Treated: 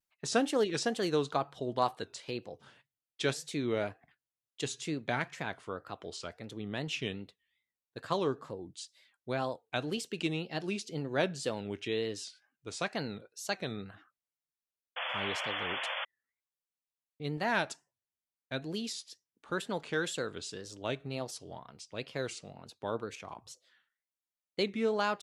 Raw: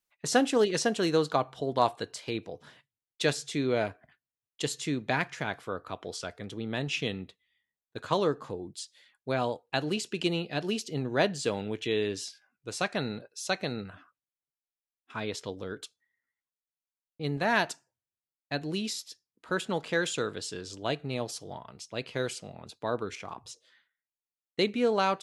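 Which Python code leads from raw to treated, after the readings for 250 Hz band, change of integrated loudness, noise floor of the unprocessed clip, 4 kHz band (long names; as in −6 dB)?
−4.5 dB, −4.5 dB, below −85 dBFS, −3.5 dB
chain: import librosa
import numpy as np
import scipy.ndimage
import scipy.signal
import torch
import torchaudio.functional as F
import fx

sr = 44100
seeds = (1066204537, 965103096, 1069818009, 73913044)

y = fx.wow_flutter(x, sr, seeds[0], rate_hz=2.1, depth_cents=140.0)
y = fx.spec_paint(y, sr, seeds[1], shape='noise', start_s=14.96, length_s=1.09, low_hz=490.0, high_hz=3500.0, level_db=-32.0)
y = F.gain(torch.from_numpy(y), -4.5).numpy()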